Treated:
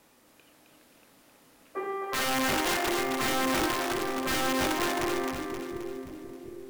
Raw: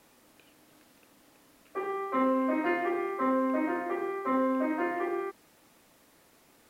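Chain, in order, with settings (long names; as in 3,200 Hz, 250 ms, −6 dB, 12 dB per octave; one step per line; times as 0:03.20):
wrap-around overflow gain 23 dB
echo with a time of its own for lows and highs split 450 Hz, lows 723 ms, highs 264 ms, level −4 dB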